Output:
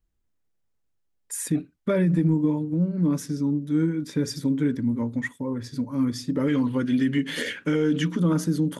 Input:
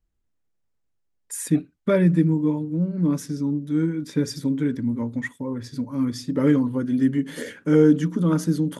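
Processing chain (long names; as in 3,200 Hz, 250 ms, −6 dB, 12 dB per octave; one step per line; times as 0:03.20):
0:06.48–0:08.20: parametric band 2,800 Hz +12 dB 1.7 octaves
brickwall limiter −14.5 dBFS, peak gain reduction 9.5 dB
0:02.10–0:02.74: transient designer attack +5 dB, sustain 0 dB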